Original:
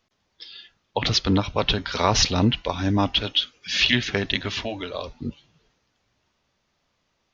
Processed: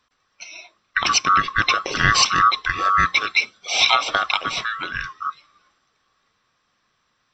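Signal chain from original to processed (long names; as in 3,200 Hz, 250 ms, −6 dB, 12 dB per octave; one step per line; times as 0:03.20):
neighbouring bands swapped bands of 1,000 Hz
downsampling to 16,000 Hz
level +3.5 dB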